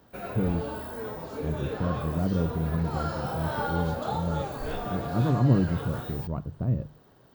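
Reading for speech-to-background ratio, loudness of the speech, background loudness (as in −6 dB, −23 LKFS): 5.0 dB, −29.5 LKFS, −34.5 LKFS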